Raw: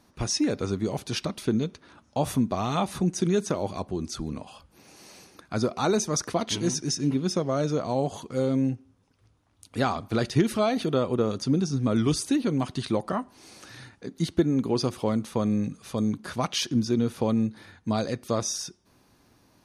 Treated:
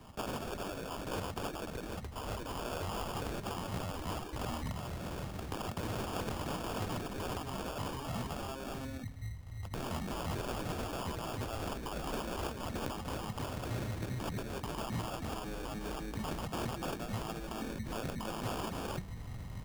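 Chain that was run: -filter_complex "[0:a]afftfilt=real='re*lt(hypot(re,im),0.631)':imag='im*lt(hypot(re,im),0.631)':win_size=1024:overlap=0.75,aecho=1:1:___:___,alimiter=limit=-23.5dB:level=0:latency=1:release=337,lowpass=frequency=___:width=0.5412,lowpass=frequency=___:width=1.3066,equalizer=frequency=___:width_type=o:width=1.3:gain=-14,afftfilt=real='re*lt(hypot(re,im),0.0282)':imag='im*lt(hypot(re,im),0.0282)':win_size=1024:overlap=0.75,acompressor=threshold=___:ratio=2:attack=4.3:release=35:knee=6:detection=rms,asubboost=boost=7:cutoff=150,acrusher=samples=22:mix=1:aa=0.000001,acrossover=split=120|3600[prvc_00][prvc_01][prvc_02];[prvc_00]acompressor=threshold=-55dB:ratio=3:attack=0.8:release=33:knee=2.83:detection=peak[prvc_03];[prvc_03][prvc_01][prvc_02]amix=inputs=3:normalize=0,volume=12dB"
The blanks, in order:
296, 0.398, 4.9k, 4.9k, 370, -50dB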